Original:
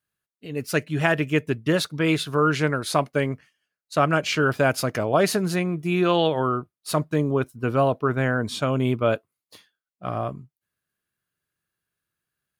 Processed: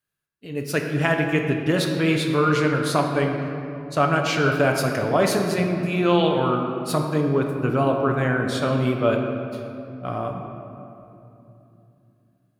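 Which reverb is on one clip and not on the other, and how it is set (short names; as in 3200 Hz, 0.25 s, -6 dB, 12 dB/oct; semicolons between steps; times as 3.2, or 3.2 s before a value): shoebox room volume 120 m³, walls hard, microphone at 0.31 m; gain -1 dB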